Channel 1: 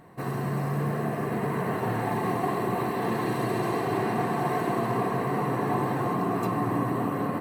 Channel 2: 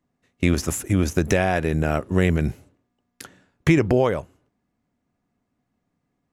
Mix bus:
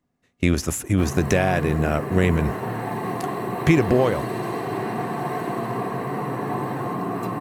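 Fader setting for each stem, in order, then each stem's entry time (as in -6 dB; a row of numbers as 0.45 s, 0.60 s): 0.0 dB, 0.0 dB; 0.80 s, 0.00 s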